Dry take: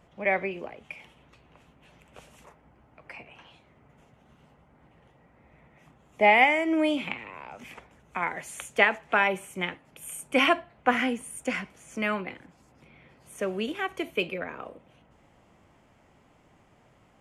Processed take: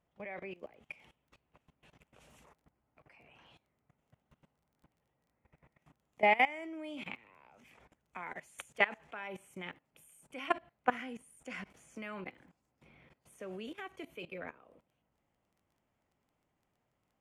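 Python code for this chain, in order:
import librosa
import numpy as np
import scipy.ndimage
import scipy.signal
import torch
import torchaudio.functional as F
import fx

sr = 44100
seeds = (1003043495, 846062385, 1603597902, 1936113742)

y = fx.level_steps(x, sr, step_db=19)
y = fx.dmg_crackle(y, sr, seeds[0], per_s=14.0, level_db=-56.0)
y = y * 10.0 ** (-5.0 / 20.0)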